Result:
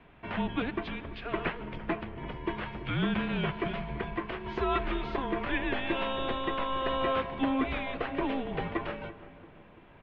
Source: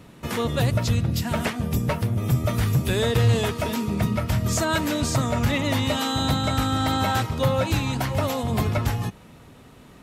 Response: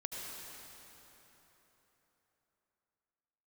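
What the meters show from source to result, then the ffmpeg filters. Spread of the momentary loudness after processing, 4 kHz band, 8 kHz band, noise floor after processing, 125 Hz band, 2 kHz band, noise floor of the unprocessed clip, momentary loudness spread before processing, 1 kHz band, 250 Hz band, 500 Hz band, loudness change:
8 LU, -10.5 dB, under -40 dB, -54 dBFS, -18.0 dB, -5.0 dB, -48 dBFS, 4 LU, -5.5 dB, -7.5 dB, -7.0 dB, -9.0 dB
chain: -filter_complex "[0:a]asplit=2[a][b];[b]adelay=339,lowpass=f=1.5k:p=1,volume=-15dB,asplit=2[c][d];[d]adelay=339,lowpass=f=1.5k:p=1,volume=0.54,asplit=2[e][f];[f]adelay=339,lowpass=f=1.5k:p=1,volume=0.54,asplit=2[g][h];[h]adelay=339,lowpass=f=1.5k:p=1,volume=0.54,asplit=2[i][j];[j]adelay=339,lowpass=f=1.5k:p=1,volume=0.54[k];[a][c][e][g][i][k]amix=inputs=6:normalize=0,asplit=2[l][m];[1:a]atrim=start_sample=2205[n];[m][n]afir=irnorm=-1:irlink=0,volume=-18dB[o];[l][o]amix=inputs=2:normalize=0,highpass=f=310:t=q:w=0.5412,highpass=f=310:t=q:w=1.307,lowpass=f=3.3k:t=q:w=0.5176,lowpass=f=3.3k:t=q:w=0.7071,lowpass=f=3.3k:t=q:w=1.932,afreqshift=-260,volume=-4.5dB"

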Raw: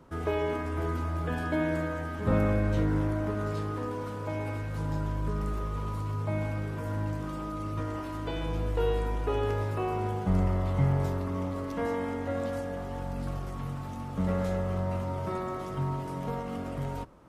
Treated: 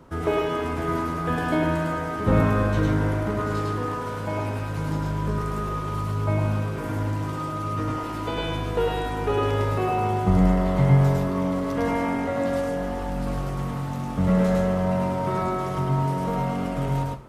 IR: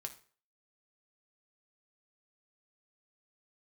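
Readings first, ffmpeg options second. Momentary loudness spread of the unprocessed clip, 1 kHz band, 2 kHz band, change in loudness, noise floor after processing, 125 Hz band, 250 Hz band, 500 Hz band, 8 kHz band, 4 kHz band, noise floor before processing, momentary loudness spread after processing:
8 LU, +9.0 dB, +7.0 dB, +7.0 dB, -30 dBFS, +6.5 dB, +7.5 dB, +6.5 dB, n/a, +9.0 dB, -37 dBFS, 8 LU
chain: -filter_complex "[0:a]asplit=2[a][b];[1:a]atrim=start_sample=2205,adelay=104[c];[b][c]afir=irnorm=-1:irlink=0,volume=3dB[d];[a][d]amix=inputs=2:normalize=0,volume=5.5dB"

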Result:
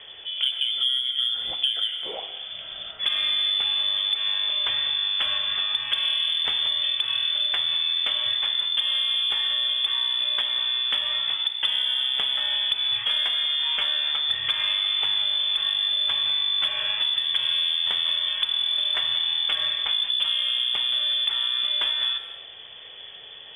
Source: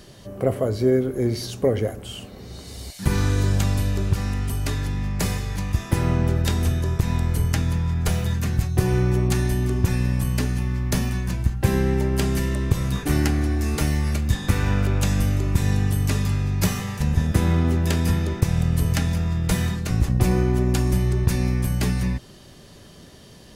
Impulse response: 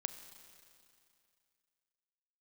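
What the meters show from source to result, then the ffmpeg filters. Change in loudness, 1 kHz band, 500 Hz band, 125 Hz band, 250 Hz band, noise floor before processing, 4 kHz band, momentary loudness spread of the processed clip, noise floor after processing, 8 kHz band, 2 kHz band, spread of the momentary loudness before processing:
+1.0 dB, -5.5 dB, -20.0 dB, under -35 dB, under -30 dB, -45 dBFS, +19.0 dB, 4 LU, -42 dBFS, under -15 dB, +1.0 dB, 5 LU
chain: -filter_complex "[0:a]highpass=110,lowpass=f=3.1k:t=q:w=0.5098,lowpass=f=3.1k:t=q:w=0.6013,lowpass=f=3.1k:t=q:w=0.9,lowpass=f=3.1k:t=q:w=2.563,afreqshift=-3600,asplit=2[a][b];[b]asoftclip=type=tanh:threshold=-18.5dB,volume=-10dB[c];[a][c]amix=inputs=2:normalize=0[d];[1:a]atrim=start_sample=2205,afade=t=out:st=0.4:d=0.01,atrim=end_sample=18081,asetrate=52920,aresample=44100[e];[d][e]afir=irnorm=-1:irlink=0,acompressor=threshold=-27dB:ratio=6,volume=5.5dB"

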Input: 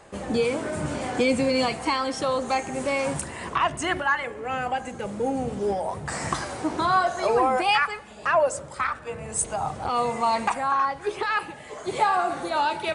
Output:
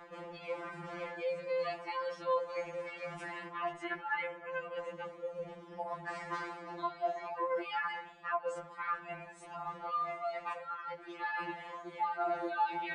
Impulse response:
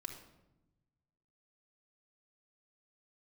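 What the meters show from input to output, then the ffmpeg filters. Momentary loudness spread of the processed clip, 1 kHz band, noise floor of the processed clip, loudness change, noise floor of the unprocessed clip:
9 LU, -13.0 dB, -52 dBFS, -13.0 dB, -42 dBFS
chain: -af "areverse,acompressor=threshold=-34dB:ratio=6,areverse,lowpass=2.5k,lowshelf=f=340:g=-11,afftfilt=real='re*2.83*eq(mod(b,8),0)':imag='im*2.83*eq(mod(b,8),0)':win_size=2048:overlap=0.75,volume=3dB"

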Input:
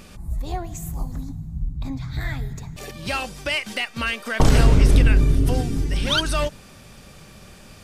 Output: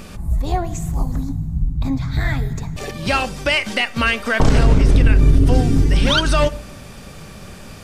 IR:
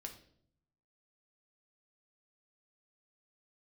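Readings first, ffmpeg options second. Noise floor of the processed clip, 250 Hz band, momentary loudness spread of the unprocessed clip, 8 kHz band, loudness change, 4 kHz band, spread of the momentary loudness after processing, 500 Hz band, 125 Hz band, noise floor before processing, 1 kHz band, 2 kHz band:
-37 dBFS, +5.5 dB, 16 LU, +1.5 dB, +4.5 dB, +4.0 dB, 23 LU, +5.5 dB, +4.0 dB, -46 dBFS, +6.0 dB, +6.0 dB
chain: -filter_complex "[0:a]acrossover=split=8700[a][b];[b]acompressor=threshold=-54dB:ratio=4:attack=1:release=60[c];[a][c]amix=inputs=2:normalize=0,alimiter=limit=-13dB:level=0:latency=1:release=86,asplit=2[d][e];[1:a]atrim=start_sample=2205,lowpass=2.4k[f];[e][f]afir=irnorm=-1:irlink=0,volume=-4.5dB[g];[d][g]amix=inputs=2:normalize=0,volume=6dB"

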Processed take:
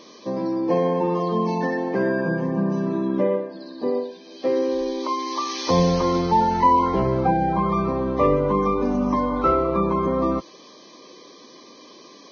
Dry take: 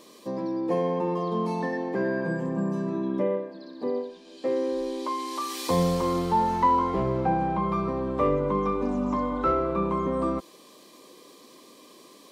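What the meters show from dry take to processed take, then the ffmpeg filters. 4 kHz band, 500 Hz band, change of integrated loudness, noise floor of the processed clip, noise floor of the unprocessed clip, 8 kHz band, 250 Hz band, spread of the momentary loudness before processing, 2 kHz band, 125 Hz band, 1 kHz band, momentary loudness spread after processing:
+6.0 dB, +5.0 dB, +5.0 dB, -47 dBFS, -52 dBFS, +3.0 dB, +5.0 dB, 7 LU, +5.0 dB, +5.0 dB, +5.0 dB, 7 LU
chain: -af "volume=5dB" -ar 16000 -c:a libvorbis -b:a 16k

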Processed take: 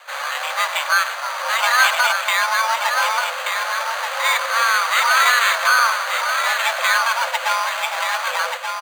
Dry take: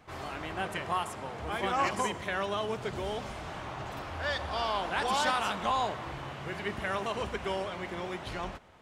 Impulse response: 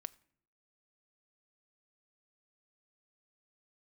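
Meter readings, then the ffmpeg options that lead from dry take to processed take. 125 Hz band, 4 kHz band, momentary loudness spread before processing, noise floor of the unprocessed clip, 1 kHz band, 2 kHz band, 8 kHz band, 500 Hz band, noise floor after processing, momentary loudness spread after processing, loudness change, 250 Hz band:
under -40 dB, +16.5 dB, 11 LU, -43 dBFS, +13.5 dB, +20.0 dB, +20.5 dB, +5.0 dB, -28 dBFS, 8 LU, +15.5 dB, under -40 dB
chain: -filter_complex "[0:a]acrusher=samples=9:mix=1:aa=0.000001,asplit=2[a][b];[b]highpass=f=720:p=1,volume=6dB,asoftclip=type=tanh:threshold=-16dB[c];[a][c]amix=inputs=2:normalize=0,lowpass=f=5.1k:p=1,volume=-6dB,aecho=1:1:1180:0.501,asplit=2[d][e];[1:a]atrim=start_sample=2205[f];[e][f]afir=irnorm=-1:irlink=0,volume=9dB[g];[d][g]amix=inputs=2:normalize=0,afreqshift=460,volume=4.5dB"

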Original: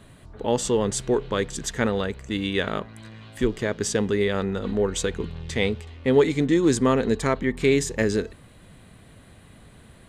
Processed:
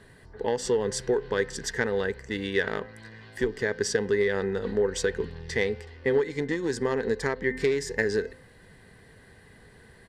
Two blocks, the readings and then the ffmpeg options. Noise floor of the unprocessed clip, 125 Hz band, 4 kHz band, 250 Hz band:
-50 dBFS, -8.0 dB, -5.0 dB, -8.5 dB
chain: -af "bandreject=f=258.5:t=h:w=4,bandreject=f=517:t=h:w=4,bandreject=f=775.5:t=h:w=4,bandreject=f=1.034k:t=h:w=4,bandreject=f=1.2925k:t=h:w=4,bandreject=f=1.551k:t=h:w=4,bandreject=f=1.8095k:t=h:w=4,bandreject=f=2.068k:t=h:w=4,bandreject=f=2.3265k:t=h:w=4,bandreject=f=2.585k:t=h:w=4,bandreject=f=2.8435k:t=h:w=4,bandreject=f=3.102k:t=h:w=4,aeval=exprs='0.501*(cos(1*acos(clip(val(0)/0.501,-1,1)))-cos(1*PI/2))+0.0794*(cos(3*acos(clip(val(0)/0.501,-1,1)))-cos(3*PI/2))':c=same,acompressor=threshold=-26dB:ratio=12,aresample=32000,aresample=44100,superequalizer=7b=2.51:9b=1.58:11b=3.16:14b=2.24"

